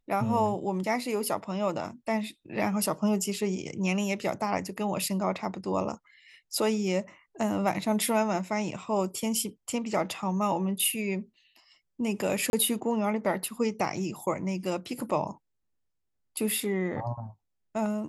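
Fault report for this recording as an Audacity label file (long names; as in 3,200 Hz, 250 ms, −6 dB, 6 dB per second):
12.500000	12.530000	drop-out 31 ms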